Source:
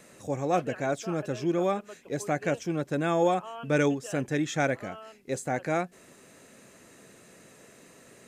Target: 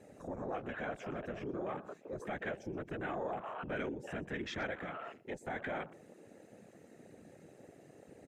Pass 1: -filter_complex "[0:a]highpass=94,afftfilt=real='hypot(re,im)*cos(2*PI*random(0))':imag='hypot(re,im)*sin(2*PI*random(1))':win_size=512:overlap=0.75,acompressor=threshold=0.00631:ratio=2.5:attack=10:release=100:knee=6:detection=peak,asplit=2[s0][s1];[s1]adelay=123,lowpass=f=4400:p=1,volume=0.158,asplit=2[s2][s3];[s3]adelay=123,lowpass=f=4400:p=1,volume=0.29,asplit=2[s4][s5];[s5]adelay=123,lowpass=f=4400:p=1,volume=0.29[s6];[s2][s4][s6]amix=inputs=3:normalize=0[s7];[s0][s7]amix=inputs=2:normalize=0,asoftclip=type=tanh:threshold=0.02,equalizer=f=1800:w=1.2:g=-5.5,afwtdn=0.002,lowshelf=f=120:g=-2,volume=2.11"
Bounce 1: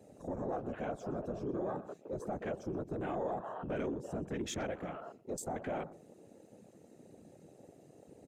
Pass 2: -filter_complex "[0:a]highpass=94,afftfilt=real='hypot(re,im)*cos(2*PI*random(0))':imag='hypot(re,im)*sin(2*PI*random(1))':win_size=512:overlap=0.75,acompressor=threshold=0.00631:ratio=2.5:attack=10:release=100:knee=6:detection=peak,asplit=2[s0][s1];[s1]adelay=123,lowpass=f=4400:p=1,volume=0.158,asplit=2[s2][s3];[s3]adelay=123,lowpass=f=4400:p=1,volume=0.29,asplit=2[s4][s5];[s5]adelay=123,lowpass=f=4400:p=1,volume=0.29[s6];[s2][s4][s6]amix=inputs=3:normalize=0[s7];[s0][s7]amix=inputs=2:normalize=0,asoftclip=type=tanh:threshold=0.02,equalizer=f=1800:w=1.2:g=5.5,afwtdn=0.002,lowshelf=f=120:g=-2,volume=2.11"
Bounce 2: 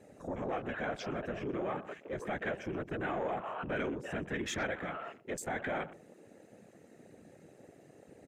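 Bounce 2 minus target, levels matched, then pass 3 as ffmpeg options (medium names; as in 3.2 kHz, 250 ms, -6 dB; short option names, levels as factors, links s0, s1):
compression: peak gain reduction -4 dB
-filter_complex "[0:a]highpass=94,afftfilt=real='hypot(re,im)*cos(2*PI*random(0))':imag='hypot(re,im)*sin(2*PI*random(1))':win_size=512:overlap=0.75,acompressor=threshold=0.00282:ratio=2.5:attack=10:release=100:knee=6:detection=peak,asplit=2[s0][s1];[s1]adelay=123,lowpass=f=4400:p=1,volume=0.158,asplit=2[s2][s3];[s3]adelay=123,lowpass=f=4400:p=1,volume=0.29,asplit=2[s4][s5];[s5]adelay=123,lowpass=f=4400:p=1,volume=0.29[s6];[s2][s4][s6]amix=inputs=3:normalize=0[s7];[s0][s7]amix=inputs=2:normalize=0,asoftclip=type=tanh:threshold=0.02,equalizer=f=1800:w=1.2:g=5.5,afwtdn=0.002,lowshelf=f=120:g=-2,volume=2.11"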